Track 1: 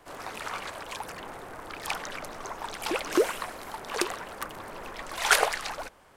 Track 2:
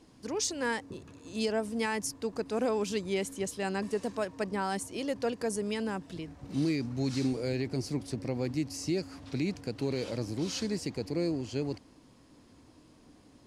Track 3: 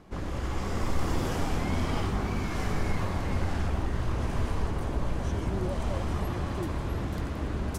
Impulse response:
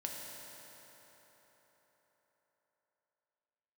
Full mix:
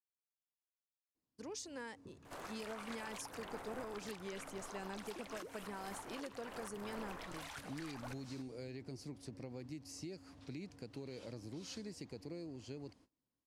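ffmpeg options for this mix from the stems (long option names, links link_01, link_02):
-filter_complex "[0:a]acompressor=threshold=-34dB:ratio=4,adelay=2250,volume=-4dB[link_01];[1:a]agate=range=-23dB:threshold=-51dB:ratio=16:detection=peak,acompressor=threshold=-32dB:ratio=6,adelay=1150,volume=-11dB[link_02];[link_01]alimiter=level_in=14dB:limit=-24dB:level=0:latency=1:release=384,volume=-14dB,volume=0dB[link_03];[link_02][link_03]amix=inputs=2:normalize=0"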